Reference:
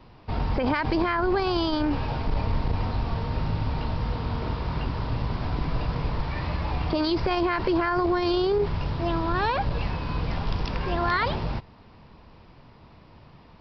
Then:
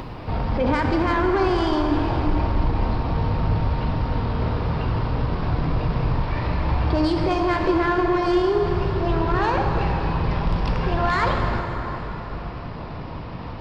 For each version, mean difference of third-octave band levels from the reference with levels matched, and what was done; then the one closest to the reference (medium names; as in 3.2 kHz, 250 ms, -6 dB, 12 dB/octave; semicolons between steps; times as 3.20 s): 4.0 dB: treble shelf 3.5 kHz -7.5 dB; upward compressor, threshold -28 dBFS; saturation -20.5 dBFS, distortion -16 dB; plate-style reverb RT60 4.5 s, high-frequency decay 0.6×, DRR 1.5 dB; trim +4.5 dB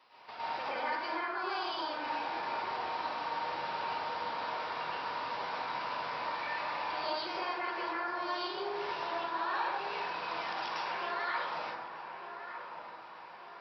9.0 dB: high-pass 900 Hz 12 dB/octave; compression 3:1, threshold -39 dBFS, peak gain reduction 13 dB; on a send: feedback echo behind a low-pass 1199 ms, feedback 50%, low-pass 2.1 kHz, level -9 dB; on the sum: plate-style reverb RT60 1.2 s, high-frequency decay 0.4×, pre-delay 95 ms, DRR -9 dB; trim -5.5 dB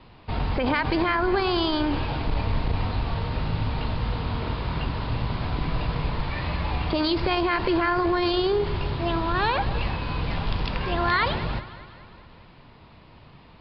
2.0 dB: steep low-pass 4.8 kHz 48 dB/octave; peaking EQ 3.2 kHz +5 dB 2 oct; on a send: echo whose repeats swap between lows and highs 101 ms, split 1.4 kHz, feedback 75%, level -13 dB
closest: third